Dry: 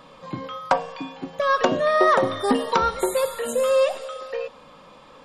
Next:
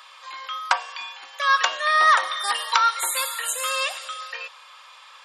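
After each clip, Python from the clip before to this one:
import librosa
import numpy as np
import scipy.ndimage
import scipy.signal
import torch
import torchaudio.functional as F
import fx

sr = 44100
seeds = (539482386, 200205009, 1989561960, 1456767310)

y = scipy.signal.sosfilt(scipy.signal.bessel(4, 1600.0, 'highpass', norm='mag', fs=sr, output='sos'), x)
y = y * 10.0 ** (8.5 / 20.0)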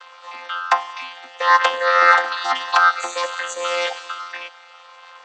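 y = fx.chord_vocoder(x, sr, chord='bare fifth', root=53)
y = y * 10.0 ** (5.0 / 20.0)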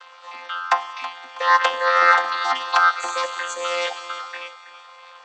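y = fx.echo_feedback(x, sr, ms=324, feedback_pct=41, wet_db=-14)
y = y * 10.0 ** (-2.0 / 20.0)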